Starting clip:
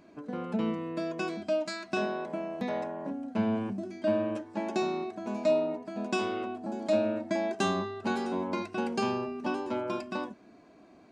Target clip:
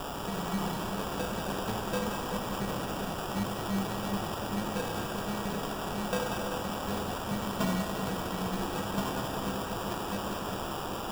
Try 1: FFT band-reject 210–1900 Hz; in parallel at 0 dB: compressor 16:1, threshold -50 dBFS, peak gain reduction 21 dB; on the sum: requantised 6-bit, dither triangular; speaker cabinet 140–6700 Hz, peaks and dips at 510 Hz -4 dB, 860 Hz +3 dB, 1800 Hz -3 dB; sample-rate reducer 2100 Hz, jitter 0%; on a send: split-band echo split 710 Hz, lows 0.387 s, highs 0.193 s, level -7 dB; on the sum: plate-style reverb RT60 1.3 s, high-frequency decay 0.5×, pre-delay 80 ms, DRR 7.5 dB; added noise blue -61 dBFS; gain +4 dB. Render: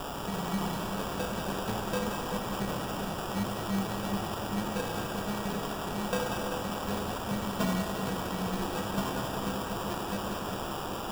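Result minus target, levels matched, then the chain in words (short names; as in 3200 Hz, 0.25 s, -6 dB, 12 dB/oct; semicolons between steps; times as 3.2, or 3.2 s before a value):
compressor: peak gain reduction -6 dB
FFT band-reject 210–1900 Hz; in parallel at 0 dB: compressor 16:1, threshold -56.5 dBFS, peak gain reduction 27.5 dB; on the sum: requantised 6-bit, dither triangular; speaker cabinet 140–6700 Hz, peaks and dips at 510 Hz -4 dB, 860 Hz +3 dB, 1800 Hz -3 dB; sample-rate reducer 2100 Hz, jitter 0%; on a send: split-band echo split 710 Hz, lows 0.387 s, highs 0.193 s, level -7 dB; on the sum: plate-style reverb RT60 1.3 s, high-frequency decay 0.5×, pre-delay 80 ms, DRR 7.5 dB; added noise blue -61 dBFS; gain +4 dB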